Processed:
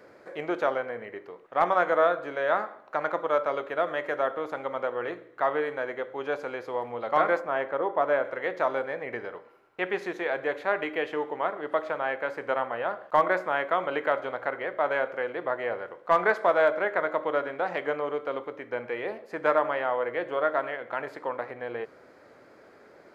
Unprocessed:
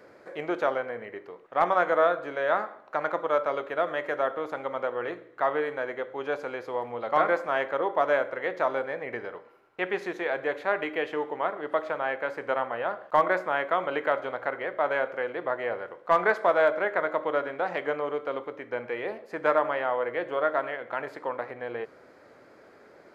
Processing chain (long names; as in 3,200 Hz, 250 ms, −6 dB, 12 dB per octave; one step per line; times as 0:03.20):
0:07.39–0:08.23: high-shelf EQ 2,600 Hz → 3,500 Hz −12 dB